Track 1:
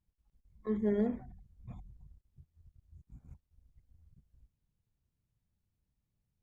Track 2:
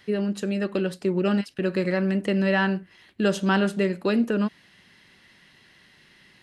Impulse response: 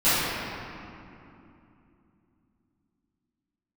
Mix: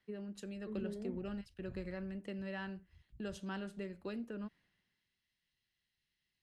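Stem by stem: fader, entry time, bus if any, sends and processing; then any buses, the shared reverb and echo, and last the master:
-5.5 dB, 0.00 s, no send, peaking EQ 1.5 kHz -11 dB 2.3 oct; peak limiter -32 dBFS, peak gain reduction 9 dB
-16.0 dB, 0.00 s, no send, bass shelf 82 Hz +11.5 dB; compression 3:1, threshold -25 dBFS, peak gain reduction 7.5 dB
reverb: none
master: three bands expanded up and down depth 70%

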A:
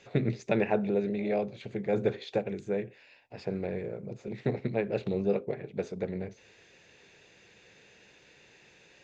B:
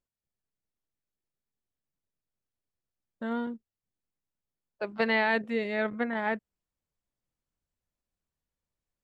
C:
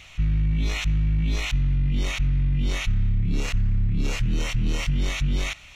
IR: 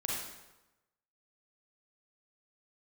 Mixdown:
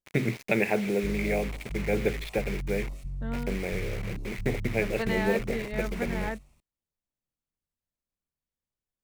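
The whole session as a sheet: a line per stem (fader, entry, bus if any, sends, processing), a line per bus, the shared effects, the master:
-1.0 dB, 0.00 s, no send, bit crusher 7-bit; peaking EQ 2.2 kHz +13 dB 0.58 oct
-6.0 dB, 0.00 s, no send, none
-14.5 dB, 0.85 s, send -16.5 dB, median filter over 9 samples; high-order bell 2.2 kHz -15 dB; step-sequenced notch 7.2 Hz 220–1600 Hz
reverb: on, RT60 1.0 s, pre-delay 32 ms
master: peaking EQ 250 Hz +2.5 dB 1.6 oct

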